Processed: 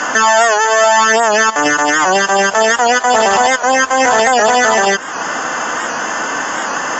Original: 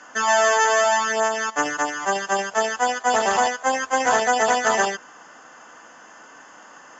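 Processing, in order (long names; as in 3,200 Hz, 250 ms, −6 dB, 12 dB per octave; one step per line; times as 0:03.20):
downward compressor 2 to 1, threshold −40 dBFS, peak gain reduction 14 dB
boost into a limiter +28 dB
wow of a warped record 78 rpm, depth 100 cents
level −1 dB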